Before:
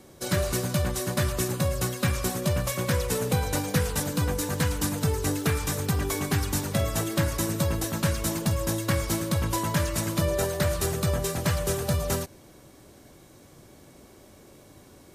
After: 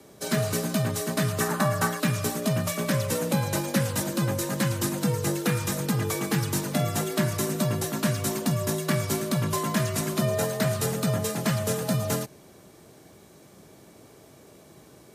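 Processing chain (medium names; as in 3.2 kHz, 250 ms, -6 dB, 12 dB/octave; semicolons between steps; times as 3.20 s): 1.40–2.00 s: high-order bell 1.1 kHz +10.5 dB; frequency shift +48 Hz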